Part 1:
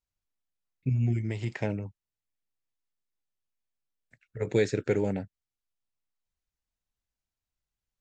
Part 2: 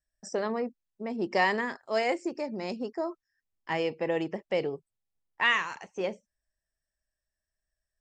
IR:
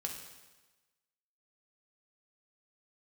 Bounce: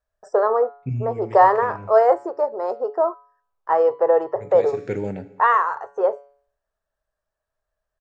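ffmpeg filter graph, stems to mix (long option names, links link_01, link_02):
-filter_complex "[0:a]volume=-1dB,asplit=2[link_01][link_02];[link_02]volume=-9dB[link_03];[1:a]firequalizer=gain_entry='entry(120,0);entry(180,-26);entry(430,11);entry(840,12);entry(1300,14);entry(2300,-18);entry(4000,-11);entry(5700,-12);entry(8300,-6)':delay=0.05:min_phase=1,volume=2.5dB,asplit=2[link_04][link_05];[link_05]apad=whole_len=357332[link_06];[link_01][link_06]sidechaincompress=threshold=-38dB:ratio=3:attack=16:release=140[link_07];[2:a]atrim=start_sample=2205[link_08];[link_03][link_08]afir=irnorm=-1:irlink=0[link_09];[link_07][link_04][link_09]amix=inputs=3:normalize=0,highshelf=frequency=5100:gain=-6.5,bandreject=frequency=141.7:width_type=h:width=4,bandreject=frequency=283.4:width_type=h:width=4,bandreject=frequency=425.1:width_type=h:width=4,bandreject=frequency=566.8:width_type=h:width=4,bandreject=frequency=708.5:width_type=h:width=4,bandreject=frequency=850.2:width_type=h:width=4,bandreject=frequency=991.9:width_type=h:width=4,bandreject=frequency=1133.6:width_type=h:width=4,bandreject=frequency=1275.3:width_type=h:width=4,bandreject=frequency=1417:width_type=h:width=4,bandreject=frequency=1558.7:width_type=h:width=4,bandreject=frequency=1700.4:width_type=h:width=4,bandreject=frequency=1842.1:width_type=h:width=4,bandreject=frequency=1983.8:width_type=h:width=4,bandreject=frequency=2125.5:width_type=h:width=4,bandreject=frequency=2267.2:width_type=h:width=4,bandreject=frequency=2408.9:width_type=h:width=4,bandreject=frequency=2550.6:width_type=h:width=4,bandreject=frequency=2692.3:width_type=h:width=4,bandreject=frequency=2834:width_type=h:width=4,bandreject=frequency=2975.7:width_type=h:width=4,bandreject=frequency=3117.4:width_type=h:width=4,bandreject=frequency=3259.1:width_type=h:width=4,bandreject=frequency=3400.8:width_type=h:width=4,bandreject=frequency=3542.5:width_type=h:width=4,bandreject=frequency=3684.2:width_type=h:width=4,bandreject=frequency=3825.9:width_type=h:width=4,bandreject=frequency=3967.6:width_type=h:width=4,bandreject=frequency=4109.3:width_type=h:width=4,bandreject=frequency=4251:width_type=h:width=4,bandreject=frequency=4392.7:width_type=h:width=4,bandreject=frequency=4534.4:width_type=h:width=4,bandreject=frequency=4676.1:width_type=h:width=4"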